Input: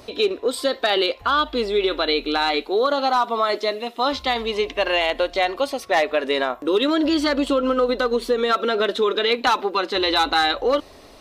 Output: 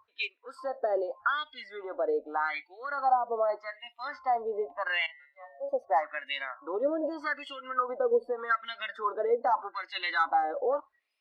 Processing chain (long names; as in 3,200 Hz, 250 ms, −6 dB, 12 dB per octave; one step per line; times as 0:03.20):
0:05.06–0:05.69: tuned comb filter 140 Hz, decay 0.94 s, harmonics all, mix 90%
LFO wah 0.83 Hz 530–2,500 Hz, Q 4.3
noise reduction from a noise print of the clip's start 23 dB